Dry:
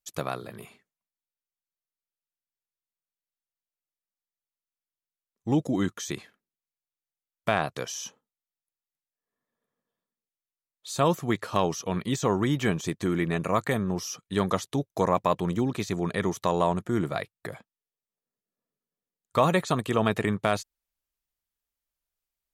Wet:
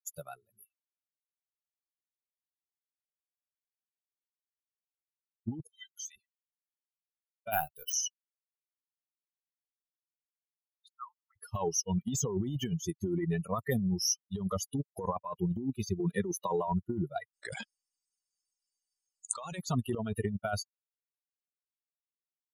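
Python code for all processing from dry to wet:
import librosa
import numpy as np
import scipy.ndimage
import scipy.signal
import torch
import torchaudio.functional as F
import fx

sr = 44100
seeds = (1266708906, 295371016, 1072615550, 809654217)

y = fx.chain(x, sr, fx.cheby2_highpass(hz=610.0, order=4, stop_db=50),
    fx.high_shelf(hz=4000.0, db=-5.0),
    fx.band_squash(depth_pct=40), at=(5.67, 6.16))
y = fx.chain(y, sr, fx.law_mismatch(coded='A'),
    fx.resample_bad(factor=3, down='filtered', up='hold'),
    fx.doubler(ms=13.0, db=-13), at=(7.51, 7.93))
y = fx.chain(y, sr, fx.ladder_bandpass(hz=1400.0, resonance_pct=55),
    fx.air_absorb(metres=200.0), at=(10.88, 11.36))
y = fx.chain(y, sr, fx.highpass(hz=97.0, slope=12),
    fx.band_squash(depth_pct=40), at=(16.0, 16.68))
y = fx.chain(y, sr, fx.brickwall_lowpass(high_hz=9600.0),
    fx.tilt_eq(slope=2.5),
    fx.env_flatten(amount_pct=100), at=(17.33, 19.58))
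y = fx.bin_expand(y, sr, power=3.0)
y = fx.over_compress(y, sr, threshold_db=-39.0, ratio=-1.0)
y = y * librosa.db_to_amplitude(6.0)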